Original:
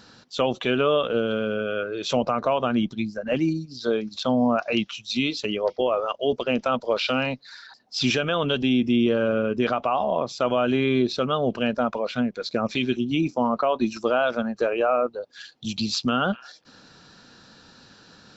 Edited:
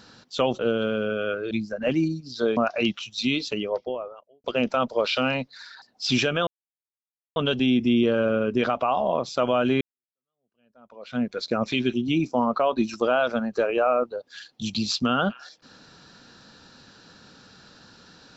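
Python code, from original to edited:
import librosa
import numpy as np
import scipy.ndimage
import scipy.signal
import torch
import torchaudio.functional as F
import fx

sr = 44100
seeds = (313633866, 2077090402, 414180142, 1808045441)

y = fx.studio_fade_out(x, sr, start_s=5.27, length_s=1.09)
y = fx.edit(y, sr, fx.cut(start_s=0.59, length_s=0.49),
    fx.cut(start_s=2.0, length_s=0.96),
    fx.cut(start_s=4.02, length_s=0.47),
    fx.insert_silence(at_s=8.39, length_s=0.89),
    fx.fade_in_span(start_s=10.84, length_s=1.41, curve='exp'), tone=tone)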